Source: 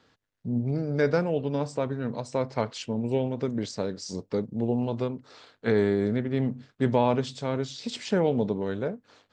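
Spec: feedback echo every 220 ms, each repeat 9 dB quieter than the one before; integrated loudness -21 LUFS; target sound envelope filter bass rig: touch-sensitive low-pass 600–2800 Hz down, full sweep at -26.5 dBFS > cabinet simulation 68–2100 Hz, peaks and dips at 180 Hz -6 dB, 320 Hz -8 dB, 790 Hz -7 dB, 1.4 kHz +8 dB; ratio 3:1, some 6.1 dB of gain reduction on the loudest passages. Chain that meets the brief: compression 3:1, threshold -26 dBFS; feedback delay 220 ms, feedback 35%, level -9 dB; touch-sensitive low-pass 600–2800 Hz down, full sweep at -26.5 dBFS; cabinet simulation 68–2100 Hz, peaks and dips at 180 Hz -6 dB, 320 Hz -8 dB, 790 Hz -7 dB, 1.4 kHz +8 dB; trim +7 dB

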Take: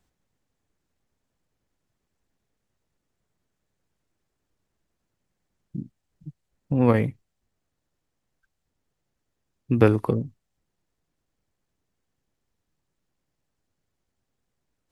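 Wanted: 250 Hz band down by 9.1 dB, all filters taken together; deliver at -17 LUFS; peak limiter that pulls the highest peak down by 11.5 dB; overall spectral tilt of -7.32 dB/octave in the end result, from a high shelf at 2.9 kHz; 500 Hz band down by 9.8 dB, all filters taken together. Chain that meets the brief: peaking EQ 250 Hz -9 dB; peaking EQ 500 Hz -8.5 dB; treble shelf 2.9 kHz -6 dB; trim +17.5 dB; peak limiter -3 dBFS

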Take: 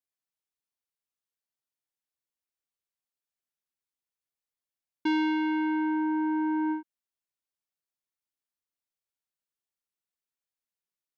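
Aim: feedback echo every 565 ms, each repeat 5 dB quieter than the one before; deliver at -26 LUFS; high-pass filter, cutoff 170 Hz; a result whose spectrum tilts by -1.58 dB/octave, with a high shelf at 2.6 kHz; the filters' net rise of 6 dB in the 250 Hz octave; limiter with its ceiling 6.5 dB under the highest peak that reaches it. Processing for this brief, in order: high-pass 170 Hz; peaking EQ 250 Hz +9 dB; treble shelf 2.6 kHz +4 dB; peak limiter -21 dBFS; feedback delay 565 ms, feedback 56%, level -5 dB; trim +1 dB

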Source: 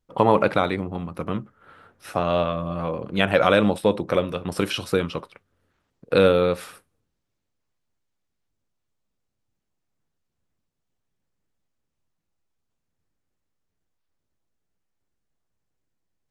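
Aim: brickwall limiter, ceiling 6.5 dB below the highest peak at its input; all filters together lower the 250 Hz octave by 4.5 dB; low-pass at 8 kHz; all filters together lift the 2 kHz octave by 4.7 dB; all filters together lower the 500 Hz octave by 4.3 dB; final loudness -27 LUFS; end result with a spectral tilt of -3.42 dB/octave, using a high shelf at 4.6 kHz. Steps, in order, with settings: low-pass 8 kHz; peaking EQ 250 Hz -5.5 dB; peaking EQ 500 Hz -4 dB; peaking EQ 2 kHz +8 dB; treble shelf 4.6 kHz -6 dB; trim -1 dB; peak limiter -10 dBFS

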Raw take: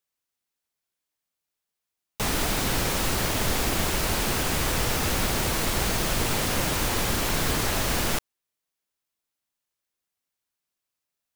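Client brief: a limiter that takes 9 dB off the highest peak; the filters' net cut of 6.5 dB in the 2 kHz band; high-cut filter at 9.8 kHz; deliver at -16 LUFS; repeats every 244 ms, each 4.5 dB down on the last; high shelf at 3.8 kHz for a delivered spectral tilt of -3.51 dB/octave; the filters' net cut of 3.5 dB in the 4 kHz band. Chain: low-pass 9.8 kHz; peaking EQ 2 kHz -8.5 dB; treble shelf 3.8 kHz +6 dB; peaking EQ 4 kHz -6 dB; peak limiter -21.5 dBFS; feedback delay 244 ms, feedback 60%, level -4.5 dB; trim +13.5 dB

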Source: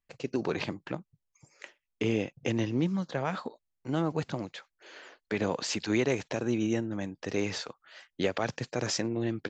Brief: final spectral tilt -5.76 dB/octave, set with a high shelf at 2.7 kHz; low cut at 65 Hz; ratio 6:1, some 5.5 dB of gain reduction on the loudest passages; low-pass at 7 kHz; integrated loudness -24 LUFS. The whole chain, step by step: high-pass 65 Hz; low-pass 7 kHz; treble shelf 2.7 kHz -8.5 dB; compression 6:1, threshold -29 dBFS; trim +12.5 dB

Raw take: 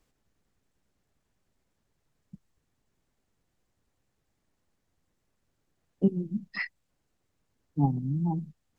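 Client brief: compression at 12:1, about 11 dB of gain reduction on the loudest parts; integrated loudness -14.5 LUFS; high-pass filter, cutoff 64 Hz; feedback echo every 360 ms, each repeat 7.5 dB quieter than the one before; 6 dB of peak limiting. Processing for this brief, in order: high-pass 64 Hz; compression 12:1, threshold -29 dBFS; peak limiter -27 dBFS; feedback delay 360 ms, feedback 42%, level -7.5 dB; trim +23.5 dB

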